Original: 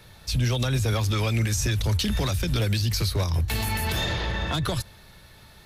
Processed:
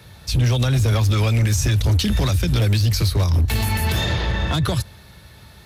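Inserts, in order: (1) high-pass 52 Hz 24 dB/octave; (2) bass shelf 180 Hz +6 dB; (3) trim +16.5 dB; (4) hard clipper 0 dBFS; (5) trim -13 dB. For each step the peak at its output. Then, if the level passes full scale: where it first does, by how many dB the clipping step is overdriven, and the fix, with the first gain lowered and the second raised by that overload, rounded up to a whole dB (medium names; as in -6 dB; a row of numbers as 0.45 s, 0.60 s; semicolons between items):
-13.5 dBFS, -10.5 dBFS, +6.0 dBFS, 0.0 dBFS, -13.0 dBFS; step 3, 6.0 dB; step 3 +10.5 dB, step 5 -7 dB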